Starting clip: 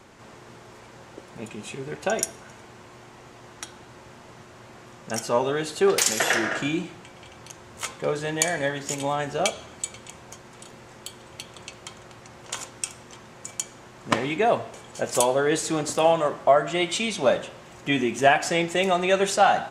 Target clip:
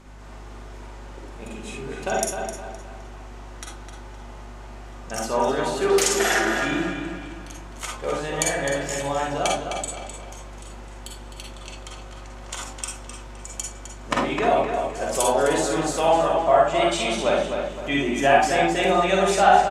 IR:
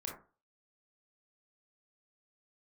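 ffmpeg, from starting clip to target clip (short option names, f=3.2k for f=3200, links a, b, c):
-filter_complex "[0:a]aeval=exprs='val(0)+0.01*(sin(2*PI*50*n/s)+sin(2*PI*2*50*n/s)/2+sin(2*PI*3*50*n/s)/3+sin(2*PI*4*50*n/s)/4+sin(2*PI*5*50*n/s)/5)':c=same,equalizer=f=67:w=0.57:g=-11,asplit=2[a][b];[b]adelay=258,lowpass=f=4.6k:p=1,volume=-6dB,asplit=2[c][d];[d]adelay=258,lowpass=f=4.6k:p=1,volume=0.42,asplit=2[e][f];[f]adelay=258,lowpass=f=4.6k:p=1,volume=0.42,asplit=2[g][h];[h]adelay=258,lowpass=f=4.6k:p=1,volume=0.42,asplit=2[i][j];[j]adelay=258,lowpass=f=4.6k:p=1,volume=0.42[k];[a][c][e][g][i][k]amix=inputs=6:normalize=0[l];[1:a]atrim=start_sample=2205,atrim=end_sample=3087,asetrate=26901,aresample=44100[m];[l][m]afir=irnorm=-1:irlink=0"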